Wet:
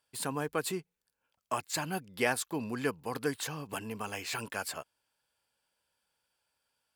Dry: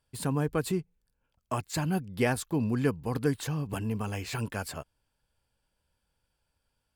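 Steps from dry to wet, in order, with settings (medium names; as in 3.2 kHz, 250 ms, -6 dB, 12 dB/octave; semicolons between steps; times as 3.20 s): high-pass 720 Hz 6 dB/octave; trim +2 dB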